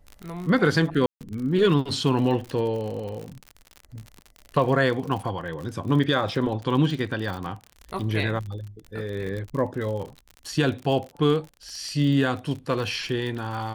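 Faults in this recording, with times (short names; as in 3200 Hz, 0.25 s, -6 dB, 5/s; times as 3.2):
crackle 54/s -31 dBFS
1.06–1.21 gap 0.147 s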